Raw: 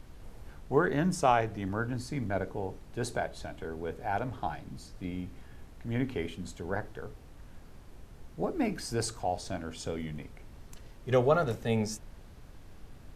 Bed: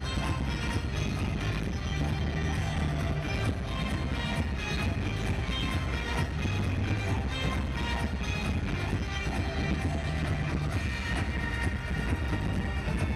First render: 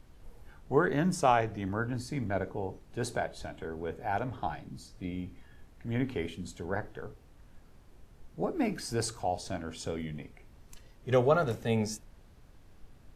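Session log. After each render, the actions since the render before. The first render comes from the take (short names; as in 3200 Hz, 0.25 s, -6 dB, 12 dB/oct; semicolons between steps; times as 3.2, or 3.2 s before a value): noise print and reduce 6 dB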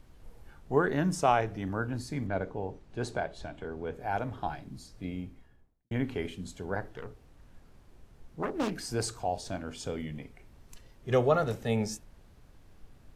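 2.27–3.94 air absorption 54 m; 5.1–5.91 studio fade out; 6.89–8.75 self-modulated delay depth 0.58 ms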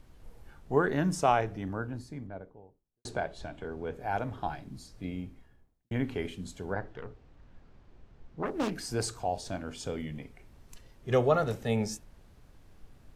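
1.2–3.05 studio fade out; 6.73–8.46 air absorption 120 m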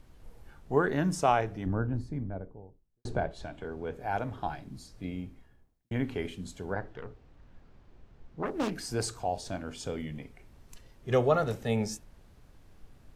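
1.66–3.31 tilt -2.5 dB/oct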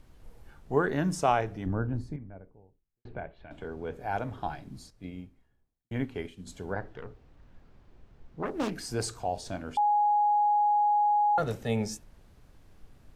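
2.16–3.51 ladder low-pass 2900 Hz, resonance 45%; 4.9–6.47 upward expander, over -48 dBFS; 9.77–11.38 bleep 831 Hz -21 dBFS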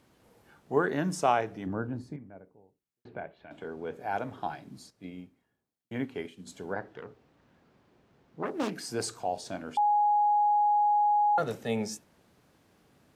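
HPF 170 Hz 12 dB/oct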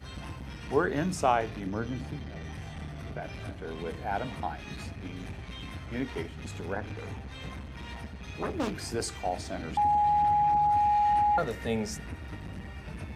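add bed -10.5 dB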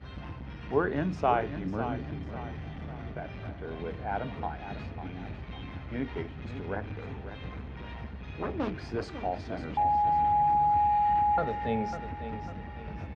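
air absorption 260 m; feedback echo 0.549 s, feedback 43%, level -10.5 dB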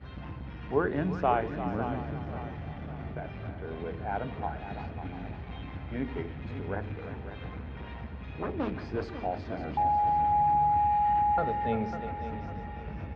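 air absorption 130 m; split-band echo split 460 Hz, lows 81 ms, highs 0.346 s, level -11 dB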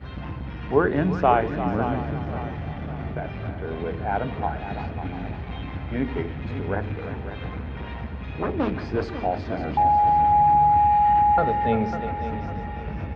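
gain +7.5 dB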